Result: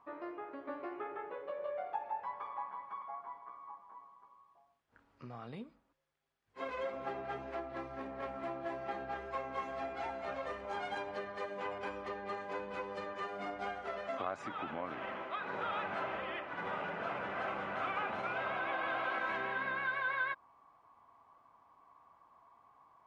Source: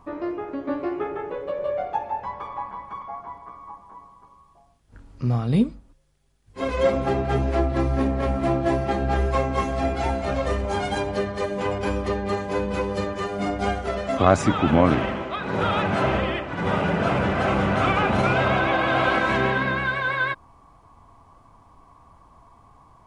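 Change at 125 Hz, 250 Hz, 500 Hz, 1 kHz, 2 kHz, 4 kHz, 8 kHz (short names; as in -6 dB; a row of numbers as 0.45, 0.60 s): -29.5 dB, -23.5 dB, -17.0 dB, -13.5 dB, -12.5 dB, -17.0 dB, under -20 dB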